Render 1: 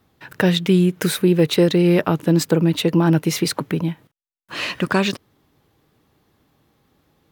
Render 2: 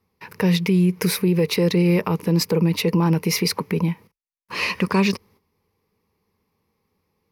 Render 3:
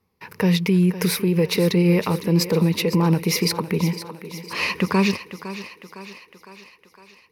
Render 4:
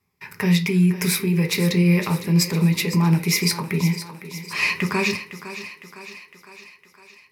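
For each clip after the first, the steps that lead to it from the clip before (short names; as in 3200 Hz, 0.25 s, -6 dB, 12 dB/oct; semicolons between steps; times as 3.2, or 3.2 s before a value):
gate -53 dBFS, range -11 dB; ripple EQ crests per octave 0.85, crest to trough 11 dB; limiter -10.5 dBFS, peak gain reduction 8.5 dB
thinning echo 0.508 s, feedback 59%, high-pass 210 Hz, level -12 dB
reverb RT60 0.25 s, pre-delay 3 ms, DRR 5 dB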